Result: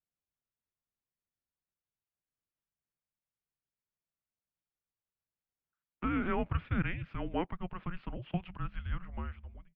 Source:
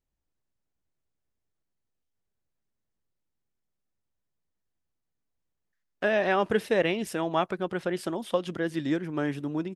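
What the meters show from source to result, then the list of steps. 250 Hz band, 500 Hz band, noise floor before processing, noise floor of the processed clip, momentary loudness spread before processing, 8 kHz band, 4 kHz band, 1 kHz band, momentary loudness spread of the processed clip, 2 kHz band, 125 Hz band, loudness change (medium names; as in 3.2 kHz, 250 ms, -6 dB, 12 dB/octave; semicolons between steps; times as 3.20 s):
-7.5 dB, -16.0 dB, -82 dBFS, under -85 dBFS, 6 LU, under -30 dB, -14.0 dB, -9.0 dB, 10 LU, -11.0 dB, 0.0 dB, -9.0 dB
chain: fade out at the end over 0.70 s; mistuned SSB -360 Hz 210–3300 Hz; trim -7 dB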